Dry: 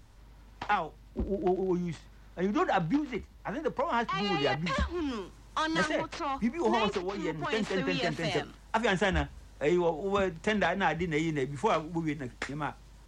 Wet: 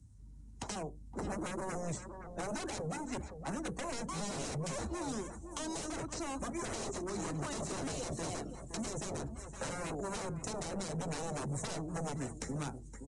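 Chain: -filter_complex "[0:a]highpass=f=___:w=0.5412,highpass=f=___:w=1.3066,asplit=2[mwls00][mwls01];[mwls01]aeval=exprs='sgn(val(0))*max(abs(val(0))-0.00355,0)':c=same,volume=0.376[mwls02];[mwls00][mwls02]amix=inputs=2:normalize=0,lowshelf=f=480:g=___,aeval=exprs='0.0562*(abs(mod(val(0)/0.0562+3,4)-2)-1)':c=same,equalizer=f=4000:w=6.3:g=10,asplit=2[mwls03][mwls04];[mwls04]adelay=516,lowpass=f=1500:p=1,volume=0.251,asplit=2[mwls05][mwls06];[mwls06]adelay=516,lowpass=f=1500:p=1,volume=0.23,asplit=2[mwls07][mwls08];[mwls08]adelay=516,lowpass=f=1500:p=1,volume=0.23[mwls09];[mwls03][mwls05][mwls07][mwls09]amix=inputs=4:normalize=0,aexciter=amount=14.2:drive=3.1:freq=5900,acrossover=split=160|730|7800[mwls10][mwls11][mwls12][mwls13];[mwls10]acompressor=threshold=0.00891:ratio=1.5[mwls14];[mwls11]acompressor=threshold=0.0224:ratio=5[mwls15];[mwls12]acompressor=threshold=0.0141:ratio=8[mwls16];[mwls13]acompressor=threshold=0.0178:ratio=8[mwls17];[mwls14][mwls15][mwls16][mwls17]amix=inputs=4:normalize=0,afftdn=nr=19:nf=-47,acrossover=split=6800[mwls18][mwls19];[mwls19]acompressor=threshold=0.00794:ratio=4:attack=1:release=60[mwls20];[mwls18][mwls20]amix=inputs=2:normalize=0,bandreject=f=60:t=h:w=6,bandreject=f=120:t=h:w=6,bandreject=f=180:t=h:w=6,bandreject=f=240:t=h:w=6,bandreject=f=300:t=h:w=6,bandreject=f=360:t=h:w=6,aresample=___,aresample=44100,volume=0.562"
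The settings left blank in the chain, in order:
49, 49, 8.5, 22050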